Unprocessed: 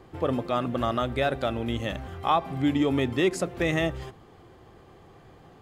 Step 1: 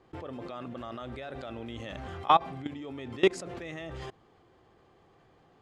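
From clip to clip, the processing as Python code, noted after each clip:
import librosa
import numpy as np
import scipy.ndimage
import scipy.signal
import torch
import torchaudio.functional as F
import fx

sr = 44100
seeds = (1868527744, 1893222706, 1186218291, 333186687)

y = scipy.signal.sosfilt(scipy.signal.butter(2, 7300.0, 'lowpass', fs=sr, output='sos'), x)
y = fx.low_shelf(y, sr, hz=190.0, db=-6.0)
y = fx.level_steps(y, sr, step_db=22)
y = F.gain(torch.from_numpy(y), 4.0).numpy()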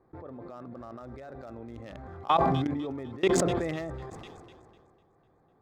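y = fx.wiener(x, sr, points=15)
y = fx.echo_wet_highpass(y, sr, ms=250, feedback_pct=66, hz=3800.0, wet_db=-17.0)
y = fx.sustainer(y, sr, db_per_s=25.0)
y = F.gain(torch.from_numpy(y), -3.0).numpy()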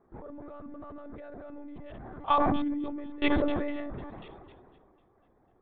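y = fx.air_absorb(x, sr, metres=150.0)
y = fx.lpc_monotone(y, sr, seeds[0], pitch_hz=290.0, order=16)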